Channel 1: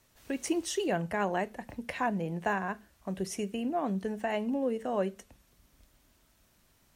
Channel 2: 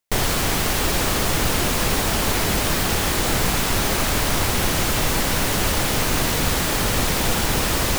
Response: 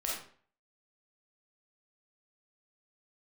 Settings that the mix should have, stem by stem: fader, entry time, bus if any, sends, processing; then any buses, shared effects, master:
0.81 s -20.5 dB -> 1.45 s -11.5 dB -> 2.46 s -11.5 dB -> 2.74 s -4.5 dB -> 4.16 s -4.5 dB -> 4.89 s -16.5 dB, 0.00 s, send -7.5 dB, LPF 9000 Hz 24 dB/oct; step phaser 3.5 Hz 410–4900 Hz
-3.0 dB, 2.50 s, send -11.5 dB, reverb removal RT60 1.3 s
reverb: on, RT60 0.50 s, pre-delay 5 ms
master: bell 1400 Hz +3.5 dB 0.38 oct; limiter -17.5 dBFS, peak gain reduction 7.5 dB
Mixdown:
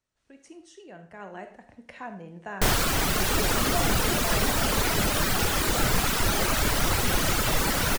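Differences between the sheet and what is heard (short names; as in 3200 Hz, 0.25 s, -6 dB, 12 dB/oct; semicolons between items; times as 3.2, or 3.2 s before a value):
stem 1: missing step phaser 3.5 Hz 410–4900 Hz; master: missing limiter -17.5 dBFS, peak gain reduction 7.5 dB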